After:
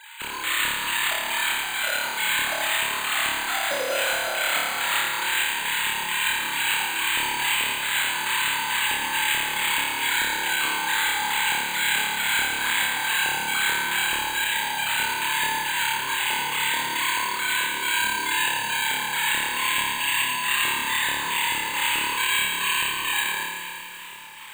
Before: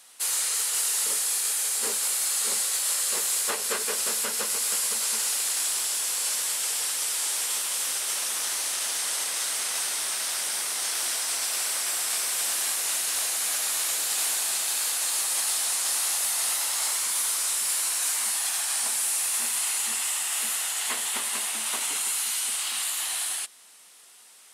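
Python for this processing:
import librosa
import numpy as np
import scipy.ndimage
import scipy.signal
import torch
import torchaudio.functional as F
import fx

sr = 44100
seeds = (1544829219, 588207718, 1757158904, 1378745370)

p1 = fx.sine_speech(x, sr)
p2 = fx.over_compress(p1, sr, threshold_db=-29.0, ratio=-1.0)
p3 = p1 + (p2 * 10.0 ** (2.0 / 20.0))
p4 = 10.0 ** (-19.5 / 20.0) * np.tanh(p3 / 10.0 ** (-19.5 / 20.0))
p5 = fx.filter_lfo_bandpass(p4, sr, shape='square', hz=2.3, low_hz=360.0, high_hz=2200.0, q=1.1)
p6 = np.clip(p5, -10.0 ** (-23.0 / 20.0), 10.0 ** (-23.0 / 20.0))
p7 = fx.air_absorb(p6, sr, metres=140.0)
p8 = fx.room_flutter(p7, sr, wall_m=4.8, rt60_s=1.3)
p9 = np.repeat(p8[::8], 8)[:len(p8)]
y = fx.echo_crushed(p9, sr, ms=190, feedback_pct=80, bits=8, wet_db=-12)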